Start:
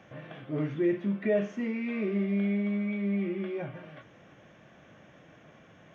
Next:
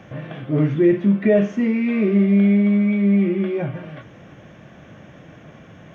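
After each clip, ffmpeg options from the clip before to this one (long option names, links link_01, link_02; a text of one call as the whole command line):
ffmpeg -i in.wav -af "lowshelf=frequency=260:gain=8,volume=8.5dB" out.wav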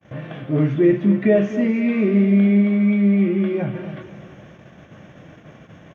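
ffmpeg -i in.wav -af "aecho=1:1:249|498|747|996:0.237|0.102|0.0438|0.0189,agate=range=-40dB:threshold=-43dB:ratio=16:detection=peak" out.wav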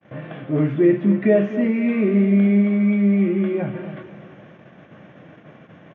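ffmpeg -i in.wav -af "highpass=140,lowpass=3000" out.wav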